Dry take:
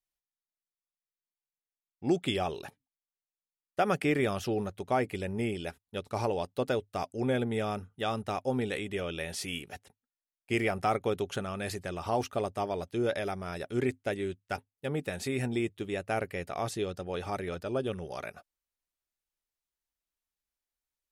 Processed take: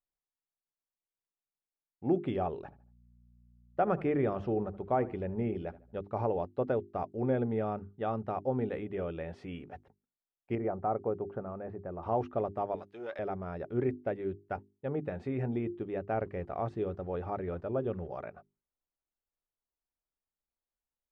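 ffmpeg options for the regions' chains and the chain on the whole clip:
ffmpeg -i in.wav -filter_complex "[0:a]asettb=1/sr,asplit=3[link_01][link_02][link_03];[link_01]atrim=end=2.624[link_04];[link_02]atrim=start=2.62:end=6.02,asetpts=PTS-STARTPTS,afade=type=in:duration=0.004:curve=qsin,afade=type=out:start_time=3.396:duration=0.004:curve=qsin,asplit=2[link_05][link_06];[link_06]adelay=76,lowpass=frequency=2100:poles=1,volume=-17.5dB,asplit=2[link_07][link_08];[link_08]adelay=76,lowpass=frequency=2100:poles=1,volume=0.37,asplit=2[link_09][link_10];[link_10]adelay=76,lowpass=frequency=2100:poles=1,volume=0.37[link_11];[link_05][link_07][link_09][link_11]amix=inputs=4:normalize=0,atrim=end_sample=149940,aeval=exprs='val(0)+0.001*(sin(2*PI*60*n/s)+sin(2*PI*2*60*n/s)/2+sin(2*PI*3*60*n/s)/3+sin(2*PI*4*60*n/s)/4+sin(2*PI*5*60*n/s)/5)':channel_layout=same[link_12];[link_03]atrim=start=6.016[link_13];[link_04][link_12]acrossfade=duration=0.004:curve1=hsin:curve2=qsin[link_14];[link_14][link_13]acrossfade=duration=0.004:curve1=qsin:curve2=hsin,asettb=1/sr,asplit=3[link_15][link_16][link_17];[link_15]atrim=end=10.554[link_18];[link_16]atrim=start=10.55:end=12.03,asetpts=PTS-STARTPTS,afade=type=in:duration=0.004:curve=qsin,afade=type=out:start_time=1.476:duration=0.004:curve=qsin,lowpass=1100,lowshelf=frequency=380:gain=-4[link_19];[link_17]atrim=start=12.026[link_20];[link_18][link_19]acrossfade=duration=0.004:curve1=hsin:curve2=qsin[link_21];[link_21][link_20]acrossfade=duration=0.004:curve1=qsin:curve2=hsin,asettb=1/sr,asplit=3[link_22][link_23][link_24];[link_22]atrim=end=12.754[link_25];[link_23]atrim=start=12.75:end=13.19,asetpts=PTS-STARTPTS,afade=type=in:duration=0.004:curve=qsin,afade=type=out:start_time=0.436:duration=0.004:curve=qsin,aeval=exprs='if(lt(val(0),0),0.708*val(0),val(0))':channel_layout=same,highpass=frequency=1400:poles=1,highshelf=frequency=2100:gain=8.5[link_26];[link_24]atrim=start=13.186[link_27];[link_25][link_26]acrossfade=duration=0.004:curve1=hsin:curve2=qsin[link_28];[link_28][link_27]acrossfade=duration=0.004:curve1=qsin:curve2=hsin,asettb=1/sr,asplit=3[link_29][link_30][link_31];[link_29]atrim=end=16.144[link_32];[link_30]atrim=start=16.14:end=18.07,asetpts=PTS-STARTPTS,afade=type=in:duration=0.004:curve=qsin,afade=type=out:start_time=1.926:duration=0.004:curve=qsin,equalizer=frequency=62:width_type=o:width=0.74:gain=7,aeval=exprs='val(0)*gte(abs(val(0)),0.00224)':channel_layout=same[link_33];[link_31]atrim=start=18.066[link_34];[link_32][link_33]acrossfade=duration=0.004:curve1=hsin:curve2=qsin[link_35];[link_35][link_34]acrossfade=duration=0.004:curve1=qsin:curve2=hsin,lowpass=1100,bandreject=frequency=50:width_type=h:width=6,bandreject=frequency=100:width_type=h:width=6,bandreject=frequency=150:width_type=h:width=6,bandreject=frequency=200:width_type=h:width=6,bandreject=frequency=250:width_type=h:width=6,bandreject=frequency=300:width_type=h:width=6,bandreject=frequency=350:width_type=h:width=6,bandreject=frequency=400:width_type=h:width=6" out.wav

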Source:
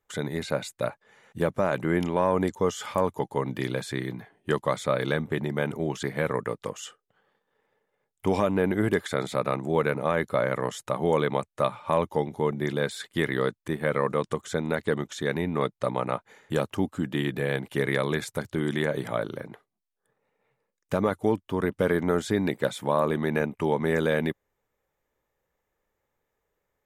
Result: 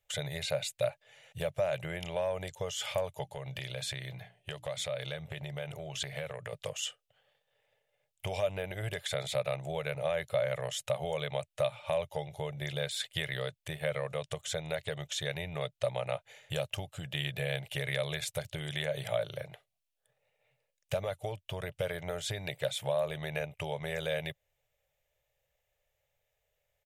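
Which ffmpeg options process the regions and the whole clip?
ffmpeg -i in.wav -filter_complex "[0:a]asettb=1/sr,asplit=3[link_01][link_02][link_03];[link_01]atrim=end=3.244[link_04];[link_02]atrim=start=3.24:end=6.53,asetpts=PTS-STARTPTS,afade=type=in:duration=0.004:curve=qsin,afade=type=out:start_time=3.286:duration=0.004:curve=qsin,highshelf=frequency=11000:gain=-4,bandreject=frequency=60:width_type=h:width=6,bandreject=frequency=120:width_type=h:width=6,bandreject=frequency=180:width_type=h:width=6,bandreject=frequency=240:width_type=h:width=6,bandreject=frequency=300:width_type=h:width=6,acompressor=threshold=-31dB:ratio=5:attack=3.2:release=140:knee=1:detection=peak[link_05];[link_03]atrim=start=6.526[link_06];[link_04][link_05]acrossfade=duration=0.004:curve1=hsin:curve2=qsin[link_07];[link_07][link_06]acrossfade=duration=0.004:curve1=qsin:curve2=hsin,acompressor=threshold=-27dB:ratio=3,firequalizer=gain_entry='entry(140,0);entry(230,-27);entry(600,4);entry(1000,-12);entry(2700,7);entry(4500,2)':delay=0.05:min_phase=1" out.wav

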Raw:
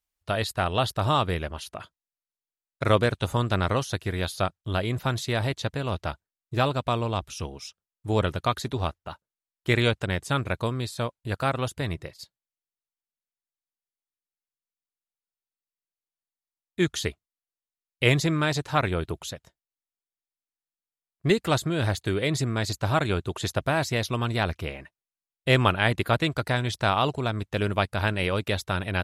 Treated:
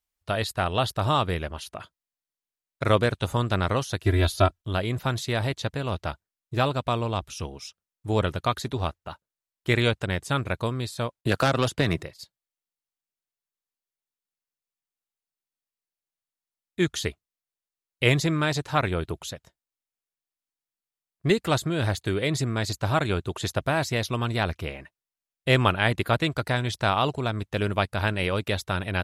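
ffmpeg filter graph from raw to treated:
ffmpeg -i in.wav -filter_complex "[0:a]asettb=1/sr,asplit=3[link_01][link_02][link_03];[link_01]atrim=end=4.044[link_04];[link_02]atrim=start=4.04:end=4.62,asetpts=PTS-STARTPTS,afade=type=in:duration=0.004:curve=qsin,afade=type=out:start_time=0.576:duration=0.004:curve=qsin,lowshelf=frequency=290:gain=8,aecho=1:1:3:0.97,atrim=end_sample=25578[link_05];[link_03]atrim=start=4.616[link_06];[link_04][link_05]acrossfade=duration=0.004:curve1=hsin:curve2=qsin[link_07];[link_07][link_06]acrossfade=duration=0.004:curve1=qsin:curve2=hsin,asettb=1/sr,asplit=3[link_08][link_09][link_10];[link_08]atrim=end=11.214[link_11];[link_09]atrim=start=11.21:end=12.03,asetpts=PTS-STARTPTS,afade=type=in:duration=0.004:curve=qsin,afade=type=out:start_time=0.816:duration=0.004:curve=qsin,agate=range=-33dB:threshold=-46dB:ratio=3:release=100:detection=peak,aeval=exprs='0.282*sin(PI/2*2.51*val(0)/0.282)':channel_layout=same,acrossover=split=140|2900|6000[link_12][link_13][link_14][link_15];[link_12]acompressor=threshold=-37dB:ratio=3[link_16];[link_13]acompressor=threshold=-20dB:ratio=3[link_17];[link_14]acompressor=threshold=-34dB:ratio=3[link_18];[link_15]acompressor=threshold=-46dB:ratio=3[link_19];[link_16][link_17][link_18][link_19]amix=inputs=4:normalize=0[link_20];[link_10]atrim=start=12.026[link_21];[link_11][link_20]acrossfade=duration=0.004:curve1=hsin:curve2=qsin[link_22];[link_22][link_21]acrossfade=duration=0.004:curve1=qsin:curve2=hsin" out.wav

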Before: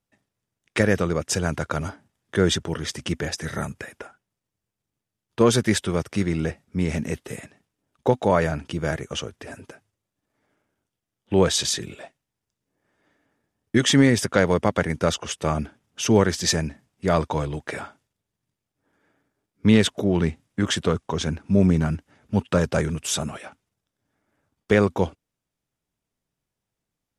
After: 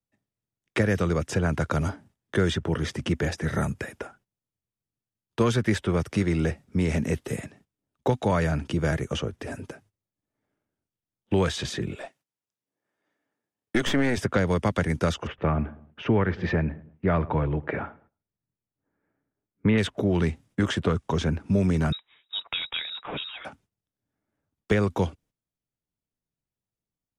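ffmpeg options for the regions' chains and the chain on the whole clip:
ffmpeg -i in.wav -filter_complex "[0:a]asettb=1/sr,asplit=3[link_01][link_02][link_03];[link_01]atrim=end=11.954[link_04];[link_02]atrim=start=11.95:end=14.17,asetpts=PTS-STARTPTS,afade=type=in:duration=0.004:curve=qsin,afade=type=out:start_time=2.216:duration=0.004:curve=qsin,highpass=frequency=510:poles=1,acontrast=48,aeval=exprs='(tanh(3.16*val(0)+0.7)-tanh(0.7))/3.16':channel_layout=same[link_05];[link_03]atrim=start=14.166[link_06];[link_04][link_05]acrossfade=duration=0.004:curve1=hsin:curve2=qsin[link_07];[link_07][link_06]acrossfade=duration=0.004:curve1=qsin:curve2=hsin,asettb=1/sr,asplit=3[link_08][link_09][link_10];[link_08]atrim=end=15.274[link_11];[link_09]atrim=start=15.27:end=19.78,asetpts=PTS-STARTPTS,afade=type=in:duration=0.004:curve=qsin,afade=type=out:start_time=4.506:duration=0.004:curve=qsin,lowpass=frequency=2400:width=0.5412,lowpass=frequency=2400:width=1.3066,asplit=2[link_12][link_13];[link_13]adelay=106,lowpass=frequency=1800:poles=1,volume=-21.5dB,asplit=2[link_14][link_15];[link_15]adelay=106,lowpass=frequency=1800:poles=1,volume=0.37,asplit=2[link_16][link_17];[link_17]adelay=106,lowpass=frequency=1800:poles=1,volume=0.37[link_18];[link_12][link_14][link_16][link_18]amix=inputs=4:normalize=0,atrim=end_sample=198891[link_19];[link_10]atrim=start=19.776[link_20];[link_11][link_19]acrossfade=duration=0.004:curve1=hsin:curve2=qsin[link_21];[link_21][link_20]acrossfade=duration=0.004:curve1=qsin:curve2=hsin,asettb=1/sr,asplit=3[link_22][link_23][link_24];[link_22]atrim=end=21.924[link_25];[link_23]atrim=start=21.92:end=23.45,asetpts=PTS-STARTPTS,afade=type=in:duration=0.004:curve=qsin,afade=type=out:start_time=1.526:duration=0.004:curve=qsin,equalizer=frequency=240:width_type=o:width=2.1:gain=-5.5,lowpass=frequency=3300:width_type=q:width=0.5098,lowpass=frequency=3300:width_type=q:width=0.6013,lowpass=frequency=3300:width_type=q:width=0.9,lowpass=frequency=3300:width_type=q:width=2.563,afreqshift=-3900[link_26];[link_24]atrim=start=23.446[link_27];[link_25][link_26]acrossfade=duration=0.004:curve1=hsin:curve2=qsin[link_28];[link_28][link_27]acrossfade=duration=0.004:curve1=qsin:curve2=hsin,acrossover=split=110|340|1100|2900[link_29][link_30][link_31][link_32][link_33];[link_29]acompressor=threshold=-35dB:ratio=4[link_34];[link_30]acompressor=threshold=-33dB:ratio=4[link_35];[link_31]acompressor=threshold=-31dB:ratio=4[link_36];[link_32]acompressor=threshold=-30dB:ratio=4[link_37];[link_33]acompressor=threshold=-41dB:ratio=4[link_38];[link_34][link_35][link_36][link_37][link_38]amix=inputs=5:normalize=0,agate=range=-13dB:threshold=-59dB:ratio=16:detection=peak,lowshelf=frequency=470:gain=6.5" out.wav

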